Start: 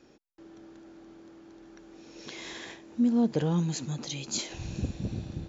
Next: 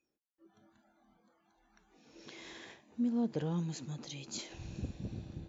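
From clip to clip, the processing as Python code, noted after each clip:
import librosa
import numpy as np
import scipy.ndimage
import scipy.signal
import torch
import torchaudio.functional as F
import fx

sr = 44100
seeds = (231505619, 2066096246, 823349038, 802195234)

y = fx.noise_reduce_blind(x, sr, reduce_db=20)
y = fx.high_shelf(y, sr, hz=6700.0, db=-5.5)
y = y * 10.0 ** (-8.0 / 20.0)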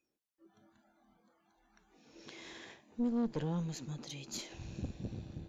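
y = fx.tube_stage(x, sr, drive_db=29.0, bias=0.65)
y = y * 10.0 ** (3.0 / 20.0)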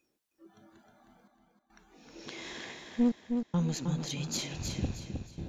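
y = fx.step_gate(x, sr, bpm=106, pattern='xxxxxxxxx...x', floor_db=-60.0, edge_ms=4.5)
y = fx.echo_feedback(y, sr, ms=313, feedback_pct=34, wet_db=-5.5)
y = y * 10.0 ** (7.5 / 20.0)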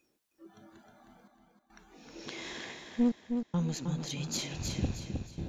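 y = fx.rider(x, sr, range_db=4, speed_s=2.0)
y = y * 10.0 ** (-1.0 / 20.0)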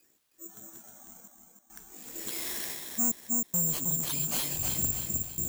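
y = 10.0 ** (-32.5 / 20.0) * np.tanh(x / 10.0 ** (-32.5 / 20.0))
y = (np.kron(y[::6], np.eye(6)[0]) * 6)[:len(y)]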